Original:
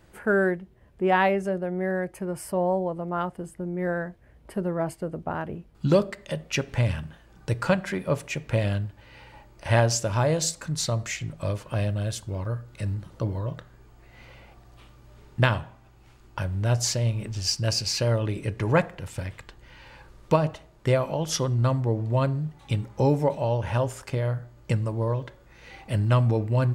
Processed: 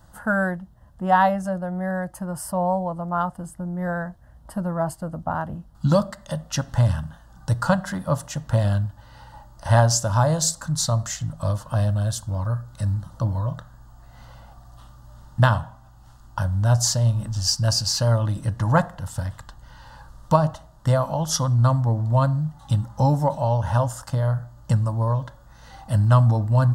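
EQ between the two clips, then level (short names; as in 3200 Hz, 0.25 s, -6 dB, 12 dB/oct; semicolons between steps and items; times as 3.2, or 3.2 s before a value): fixed phaser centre 970 Hz, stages 4; +6.5 dB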